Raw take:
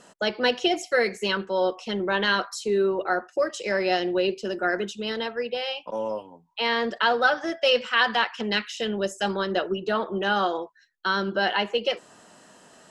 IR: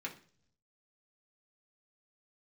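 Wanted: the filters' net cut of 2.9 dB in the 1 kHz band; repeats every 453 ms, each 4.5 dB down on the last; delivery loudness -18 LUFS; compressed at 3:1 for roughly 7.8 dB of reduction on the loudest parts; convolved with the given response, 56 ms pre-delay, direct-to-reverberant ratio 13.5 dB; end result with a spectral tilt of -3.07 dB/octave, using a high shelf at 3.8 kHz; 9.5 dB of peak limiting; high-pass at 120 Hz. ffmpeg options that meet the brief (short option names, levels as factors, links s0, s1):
-filter_complex "[0:a]highpass=120,equalizer=f=1000:t=o:g=-4.5,highshelf=f=3800:g=5,acompressor=threshold=0.0447:ratio=3,alimiter=limit=0.0708:level=0:latency=1,aecho=1:1:453|906|1359|1812|2265|2718|3171|3624|4077:0.596|0.357|0.214|0.129|0.0772|0.0463|0.0278|0.0167|0.01,asplit=2[s0][s1];[1:a]atrim=start_sample=2205,adelay=56[s2];[s1][s2]afir=irnorm=-1:irlink=0,volume=0.2[s3];[s0][s3]amix=inputs=2:normalize=0,volume=4.73"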